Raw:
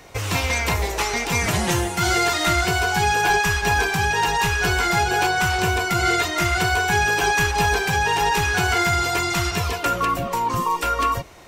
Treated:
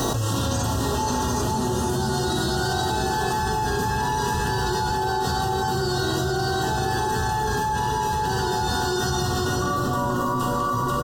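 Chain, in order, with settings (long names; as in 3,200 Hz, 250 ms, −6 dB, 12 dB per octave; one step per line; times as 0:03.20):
brickwall limiter −19 dBFS, peak gain reduction 7.5 dB
tuned comb filter 120 Hz, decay 0.2 s, harmonics odd, mix 80%
bit reduction 11 bits
Butterworth band-reject 2,100 Hz, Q 1.3
double-tracking delay 38 ms −11 dB
hollow resonant body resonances 240/1,800 Hz, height 14 dB, ringing for 65 ms
convolution reverb RT60 2.7 s, pre-delay 18 ms, DRR −4 dB
speed change +4%
single-tap delay 488 ms −3.5 dB
envelope flattener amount 100%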